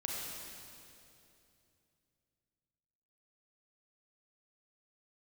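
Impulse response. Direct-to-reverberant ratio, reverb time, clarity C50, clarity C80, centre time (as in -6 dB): -3.0 dB, 2.8 s, -1.5 dB, 0.0 dB, 0.143 s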